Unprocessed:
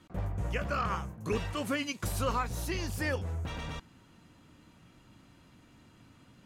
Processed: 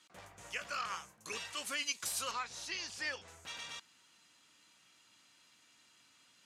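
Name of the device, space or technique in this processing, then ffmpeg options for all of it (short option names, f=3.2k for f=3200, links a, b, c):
piezo pickup straight into a mixer: -filter_complex "[0:a]asettb=1/sr,asplit=3[a][b][c];[a]atrim=end=2.314[d];[b]atrim=start=2.31:end=3.28,asetpts=PTS-STARTPTS,afade=t=in:d=0.004:c=qsin,afade=t=out:st=0.966:d=0.004:c=qsin,lowpass=5.3k[e];[c]atrim=start=3.276[f];[d][e]acrossfade=d=0.004:c1=hsin:c2=qsin[g];[g][f]acrossfade=d=0.004:c1=qsin:c2=hsin,lowpass=7.2k,aderivative,volume=8.5dB"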